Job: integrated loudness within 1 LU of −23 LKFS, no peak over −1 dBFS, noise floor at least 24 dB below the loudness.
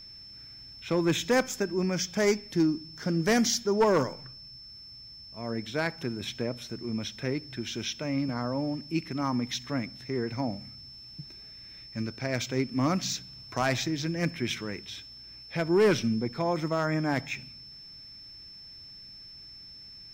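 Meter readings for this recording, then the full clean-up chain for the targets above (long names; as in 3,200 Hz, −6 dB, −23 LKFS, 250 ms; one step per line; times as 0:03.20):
interfering tone 5,300 Hz; level of the tone −45 dBFS; integrated loudness −29.5 LKFS; sample peak −15.5 dBFS; target loudness −23.0 LKFS
→ notch filter 5,300 Hz, Q 30
level +6.5 dB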